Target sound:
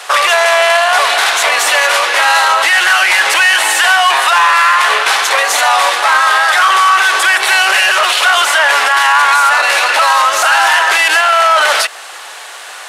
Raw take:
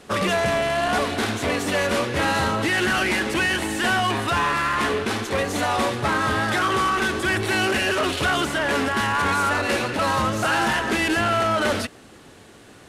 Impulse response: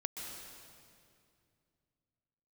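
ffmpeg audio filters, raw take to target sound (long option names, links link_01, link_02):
-filter_complex "[0:a]asplit=2[link_01][link_02];[link_02]acompressor=threshold=-31dB:ratio=6,volume=-3dB[link_03];[link_01][link_03]amix=inputs=2:normalize=0,highpass=frequency=740:width=0.5412,highpass=frequency=740:width=1.3066,acontrast=46,alimiter=level_in=12.5dB:limit=-1dB:release=50:level=0:latency=1,volume=-1dB"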